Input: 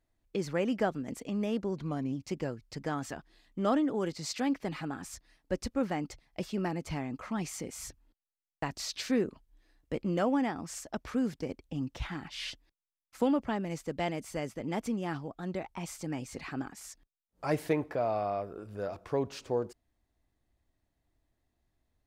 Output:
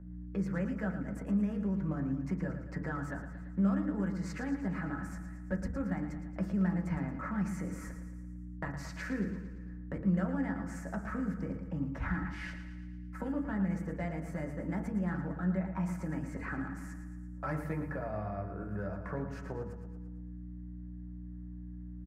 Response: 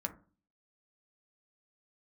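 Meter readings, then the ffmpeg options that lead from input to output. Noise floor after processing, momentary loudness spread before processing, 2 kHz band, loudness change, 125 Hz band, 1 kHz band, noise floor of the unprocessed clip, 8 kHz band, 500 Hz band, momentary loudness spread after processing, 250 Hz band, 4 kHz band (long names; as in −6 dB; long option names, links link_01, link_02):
−44 dBFS, 11 LU, −0.5 dB, −2.0 dB, +4.5 dB, −6.0 dB, below −85 dBFS, −13.0 dB, −8.0 dB, 14 LU, 0.0 dB, below −15 dB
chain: -filter_complex "[0:a]aeval=exprs='val(0)+0.00398*(sin(2*PI*60*n/s)+sin(2*PI*2*60*n/s)/2+sin(2*PI*3*60*n/s)/3+sin(2*PI*4*60*n/s)/4+sin(2*PI*5*60*n/s)/5)':channel_layout=same,acrossover=split=170|3000[link_01][link_02][link_03];[link_02]acompressor=threshold=-43dB:ratio=6[link_04];[link_01][link_04][link_03]amix=inputs=3:normalize=0,highshelf=frequency=2400:width_type=q:width=3:gain=-13,asplit=2[link_05][link_06];[link_06]asoftclip=type=hard:threshold=-34dB,volume=-11dB[link_07];[link_05][link_07]amix=inputs=2:normalize=0,aecho=1:1:113|226|339|452|565|678:0.316|0.177|0.0992|0.0555|0.0311|0.0174[link_08];[1:a]atrim=start_sample=2205[link_09];[link_08][link_09]afir=irnorm=-1:irlink=0"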